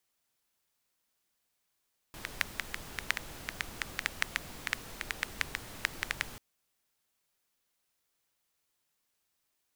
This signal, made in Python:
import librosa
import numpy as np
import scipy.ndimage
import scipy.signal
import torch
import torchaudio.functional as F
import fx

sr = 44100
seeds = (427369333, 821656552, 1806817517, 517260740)

y = fx.rain(sr, seeds[0], length_s=4.24, drops_per_s=6.0, hz=1900.0, bed_db=-6)